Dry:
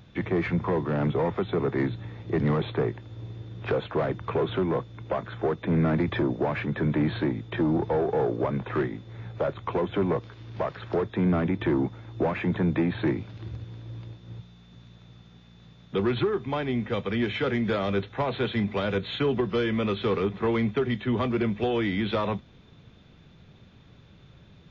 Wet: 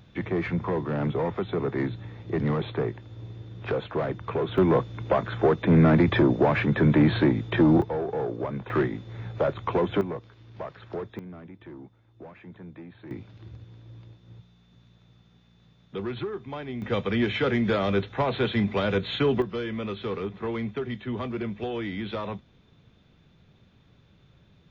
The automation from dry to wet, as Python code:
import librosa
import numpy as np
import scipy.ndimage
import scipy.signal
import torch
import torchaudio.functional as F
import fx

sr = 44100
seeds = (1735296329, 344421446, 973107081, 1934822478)

y = fx.gain(x, sr, db=fx.steps((0.0, -1.5), (4.58, 5.5), (7.82, -4.0), (8.7, 2.5), (10.01, -7.5), (11.19, -19.0), (13.11, -7.0), (16.82, 2.0), (19.42, -5.5)))